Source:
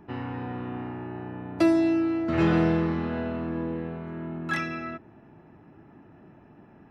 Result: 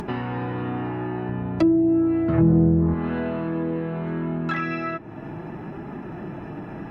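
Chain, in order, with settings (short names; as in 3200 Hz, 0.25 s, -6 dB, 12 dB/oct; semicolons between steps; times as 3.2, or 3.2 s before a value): treble ducked by the level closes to 460 Hz, closed at -18.5 dBFS; 1.29–2.94 bell 76 Hz +12.5 dB 1.9 oct; upward compressor, threshold -21 dBFS; flange 0.68 Hz, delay 4.8 ms, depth 1.8 ms, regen -45%; gain +5.5 dB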